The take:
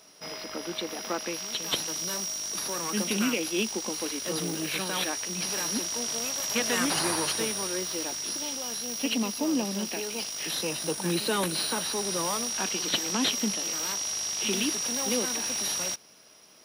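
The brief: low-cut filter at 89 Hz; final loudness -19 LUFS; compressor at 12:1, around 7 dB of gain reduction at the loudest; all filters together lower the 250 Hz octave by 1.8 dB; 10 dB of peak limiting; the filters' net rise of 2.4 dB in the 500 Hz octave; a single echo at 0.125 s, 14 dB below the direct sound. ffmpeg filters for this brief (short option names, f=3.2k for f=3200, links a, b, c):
-af "highpass=89,equalizer=f=250:t=o:g=-3.5,equalizer=f=500:t=o:g=4,acompressor=threshold=-29dB:ratio=12,alimiter=level_in=4dB:limit=-24dB:level=0:latency=1,volume=-4dB,aecho=1:1:125:0.2,volume=15.5dB"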